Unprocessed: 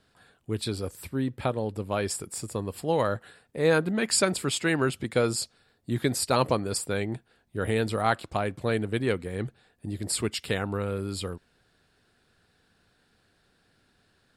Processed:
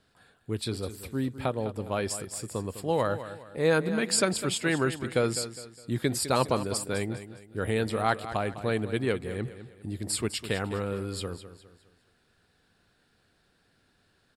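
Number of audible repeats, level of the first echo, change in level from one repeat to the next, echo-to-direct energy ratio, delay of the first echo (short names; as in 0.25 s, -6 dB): 3, -12.5 dB, -8.5 dB, -12.0 dB, 0.205 s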